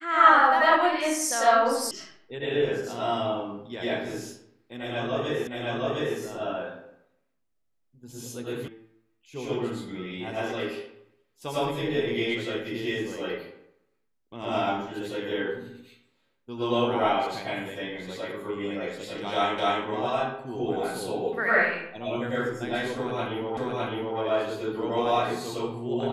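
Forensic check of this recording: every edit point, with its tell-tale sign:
1.91 s: sound stops dead
5.47 s: repeat of the last 0.71 s
8.68 s: sound stops dead
19.58 s: repeat of the last 0.26 s
23.57 s: repeat of the last 0.61 s

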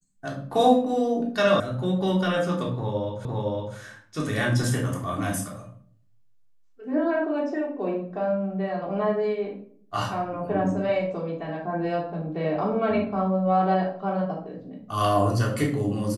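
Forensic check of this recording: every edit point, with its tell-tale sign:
1.60 s: sound stops dead
3.25 s: repeat of the last 0.51 s

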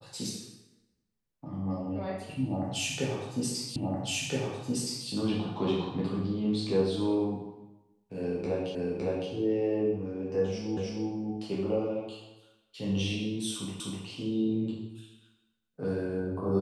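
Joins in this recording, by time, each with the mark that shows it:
3.76 s: repeat of the last 1.32 s
8.75 s: repeat of the last 0.56 s
10.77 s: repeat of the last 0.31 s
13.80 s: repeat of the last 0.25 s

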